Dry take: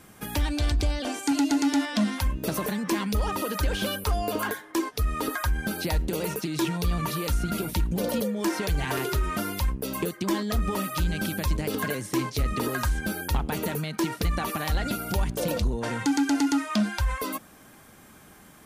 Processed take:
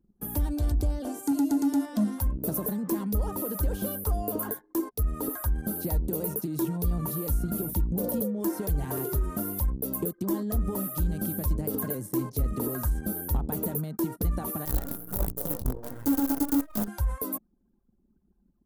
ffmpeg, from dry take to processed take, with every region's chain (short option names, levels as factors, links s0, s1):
-filter_complex "[0:a]asettb=1/sr,asplit=3[s0][s1][s2];[s0]atrim=end=14.654[s3];[s1]atrim=start=14.65:end=16.88,asetpts=PTS-STARTPTS,afade=t=in:d=0.004:c=qsin,afade=t=out:st=2.226:d=0.004:c=qsin,aecho=1:1:7:0.4,atrim=end_sample=98343,flanger=delay=18.5:depth=5.1:speed=1.4,acrusher=bits=5:dc=4:mix=0:aa=0.000001[s4];[s2]atrim=start=16.876[s5];[s3][s4]acrossfade=d=0.004:c1=hsin:c2=qsin[s6];[s6][s5]acrossfade=d=0.004:c1=qsin:c2=hsin,anlmdn=0.251,firequalizer=gain_entry='entry(270,0);entry(2300,-20);entry(13000,8)':delay=0.05:min_phase=1,volume=0.891"